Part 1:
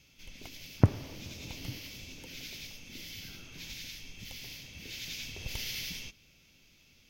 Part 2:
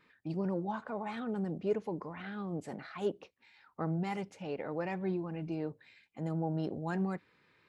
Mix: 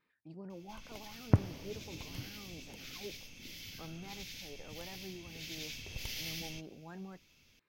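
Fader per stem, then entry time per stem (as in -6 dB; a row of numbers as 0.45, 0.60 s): -3.5, -13.5 dB; 0.50, 0.00 s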